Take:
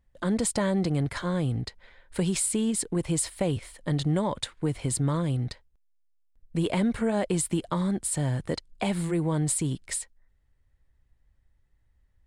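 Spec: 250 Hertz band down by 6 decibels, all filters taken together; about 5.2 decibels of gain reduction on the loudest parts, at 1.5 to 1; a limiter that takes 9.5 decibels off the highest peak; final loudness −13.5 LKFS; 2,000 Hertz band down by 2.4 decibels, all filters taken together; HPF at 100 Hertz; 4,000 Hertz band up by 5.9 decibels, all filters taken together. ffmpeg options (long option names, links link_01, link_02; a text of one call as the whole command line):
ffmpeg -i in.wav -af "highpass=100,equalizer=frequency=250:width_type=o:gain=-9,equalizer=frequency=2000:width_type=o:gain=-5,equalizer=frequency=4000:width_type=o:gain=8.5,acompressor=threshold=-35dB:ratio=1.5,volume=21.5dB,alimiter=limit=-2.5dB:level=0:latency=1" out.wav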